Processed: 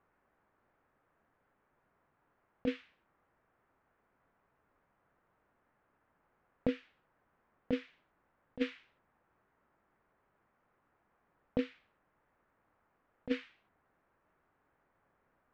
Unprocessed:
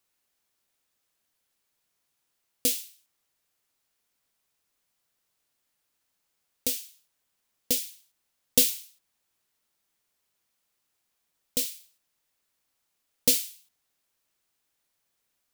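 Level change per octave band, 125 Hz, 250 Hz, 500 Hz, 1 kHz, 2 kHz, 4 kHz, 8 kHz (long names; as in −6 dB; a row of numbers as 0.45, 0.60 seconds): −1.0 dB, +2.0 dB, −1.0 dB, can't be measured, −4.0 dB, −20.0 dB, below −40 dB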